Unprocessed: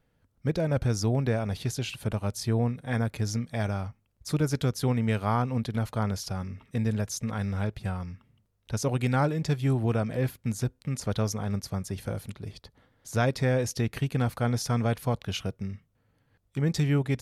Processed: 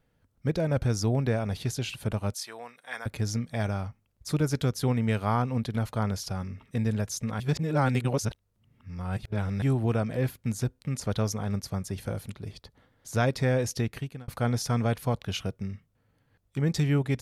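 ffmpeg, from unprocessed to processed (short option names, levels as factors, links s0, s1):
-filter_complex "[0:a]asettb=1/sr,asplit=3[s0][s1][s2];[s0]atrim=end=2.344[s3];[s1]atrim=start=2.34:end=3.06,asetpts=PTS-STARTPTS,afade=t=in:d=0.004:c=qsin,afade=t=out:st=0.716:d=0.004:c=qsin,highpass=980[s4];[s2]atrim=start=3.056[s5];[s3][s4]acrossfade=d=0.004:c1=hsin:c2=qsin[s6];[s6][s5]acrossfade=d=0.004:c1=qsin:c2=hsin,asplit=4[s7][s8][s9][s10];[s7]atrim=end=7.402[s11];[s8]atrim=start=7.398:end=9.622,asetpts=PTS-STARTPTS,areverse[s12];[s9]atrim=start=9.618:end=14.28,asetpts=PTS-STARTPTS,afade=t=out:st=4.162:d=0.5[s13];[s10]atrim=start=14.28,asetpts=PTS-STARTPTS,afade=t=in:d=0.004:c=hsin[s14];[s11][s12]acrossfade=d=0.004:c1=hsin:c2=hsin[s15];[s13][s14]concat=n=2:v=0:a=1[s16];[s15][s16]acrossfade=d=0.004:c1=hsin:c2=hsin"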